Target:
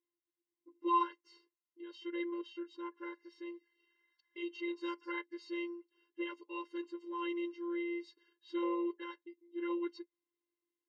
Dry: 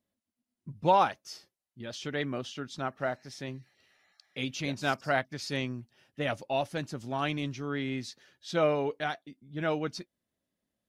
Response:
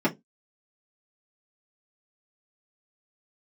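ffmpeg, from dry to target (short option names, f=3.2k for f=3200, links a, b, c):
-af "highpass=100,lowpass=2.6k,afftfilt=real='hypot(re,im)*cos(PI*b)':imag='0':win_size=512:overlap=0.75,afftfilt=real='re*eq(mod(floor(b*sr/1024/280),2),1)':imag='im*eq(mod(floor(b*sr/1024/280),2),1)':win_size=1024:overlap=0.75"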